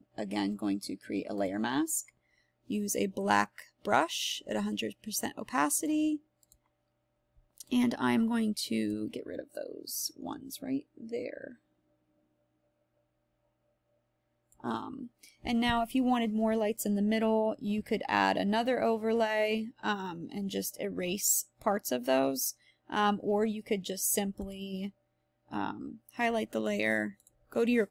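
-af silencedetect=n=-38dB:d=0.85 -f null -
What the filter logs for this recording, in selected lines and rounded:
silence_start: 6.16
silence_end: 7.58 | silence_duration: 1.42
silence_start: 11.47
silence_end: 14.64 | silence_duration: 3.17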